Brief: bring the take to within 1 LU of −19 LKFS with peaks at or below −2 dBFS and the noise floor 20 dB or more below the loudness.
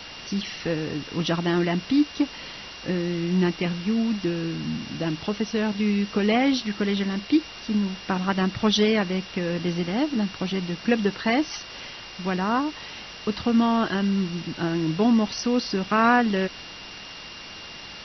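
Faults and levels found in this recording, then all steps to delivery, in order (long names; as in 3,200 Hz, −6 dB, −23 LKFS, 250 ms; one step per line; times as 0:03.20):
interfering tone 2,800 Hz; level of the tone −43 dBFS; background noise floor −40 dBFS; target noise floor −45 dBFS; integrated loudness −24.5 LKFS; sample peak −8.0 dBFS; target loudness −19.0 LKFS
→ notch filter 2,800 Hz, Q 30
broadband denoise 6 dB, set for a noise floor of −40 dBFS
level +5.5 dB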